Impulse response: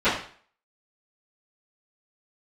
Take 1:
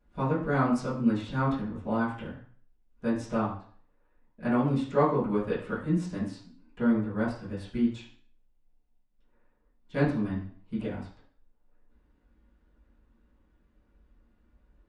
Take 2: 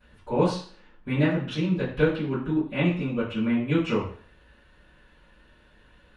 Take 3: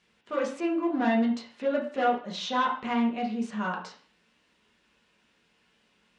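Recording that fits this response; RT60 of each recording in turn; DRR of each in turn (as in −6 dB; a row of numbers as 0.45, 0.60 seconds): 2; 0.45, 0.45, 0.45 seconds; −13.0, −20.5, −3.0 decibels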